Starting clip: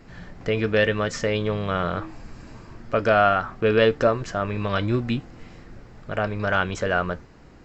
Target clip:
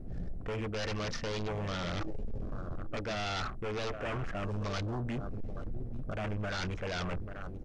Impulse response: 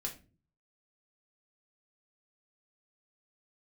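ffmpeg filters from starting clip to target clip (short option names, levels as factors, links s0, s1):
-af "aeval=exprs='0.596*(cos(1*acos(clip(val(0)/0.596,-1,1)))-cos(1*PI/2))+0.0188*(cos(3*acos(clip(val(0)/0.596,-1,1)))-cos(3*PI/2))+0.0133*(cos(7*acos(clip(val(0)/0.596,-1,1)))-cos(7*PI/2))':c=same,asuperstop=centerf=930:order=8:qfactor=5.2,areverse,acompressor=threshold=0.0316:ratio=5,areverse,aecho=1:1:836:0.188,aeval=exprs='0.0891*sin(PI/2*2.82*val(0)/0.0891)':c=same,lowshelf=f=67:g=11.5,adynamicsmooth=sensitivity=4.5:basefreq=960,equalizer=f=6300:t=o:w=1.7:g=12,asoftclip=type=tanh:threshold=0.0841,afwtdn=0.0178,volume=0.355" -ar 44100 -c:a mp2 -b:a 64k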